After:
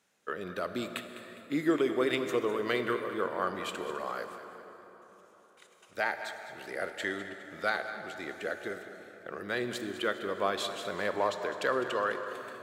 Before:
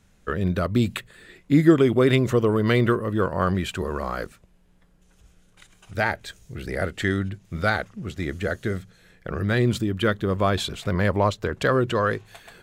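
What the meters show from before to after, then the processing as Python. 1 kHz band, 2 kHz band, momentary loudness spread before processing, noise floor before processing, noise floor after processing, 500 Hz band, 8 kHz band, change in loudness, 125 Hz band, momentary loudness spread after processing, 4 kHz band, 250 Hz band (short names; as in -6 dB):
-6.0 dB, -6.0 dB, 14 LU, -59 dBFS, -60 dBFS, -8.0 dB, -6.5 dB, -10.0 dB, -25.0 dB, 13 LU, -6.5 dB, -13.0 dB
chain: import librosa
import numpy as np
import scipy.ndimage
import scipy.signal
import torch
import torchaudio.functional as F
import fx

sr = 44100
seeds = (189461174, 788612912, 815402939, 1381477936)

y = scipy.signal.sosfilt(scipy.signal.butter(2, 390.0, 'highpass', fs=sr, output='sos'), x)
y = fx.echo_feedback(y, sr, ms=205, feedback_pct=45, wet_db=-13.5)
y = fx.rev_plate(y, sr, seeds[0], rt60_s=4.3, hf_ratio=0.55, predelay_ms=0, drr_db=8.0)
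y = y * librosa.db_to_amplitude(-7.0)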